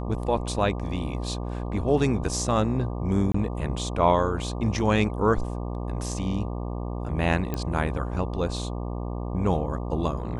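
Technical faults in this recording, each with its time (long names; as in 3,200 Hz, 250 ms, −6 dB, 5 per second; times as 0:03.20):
mains buzz 60 Hz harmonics 20 −31 dBFS
0:03.32–0:03.34: drop-out 24 ms
0:07.54: click −15 dBFS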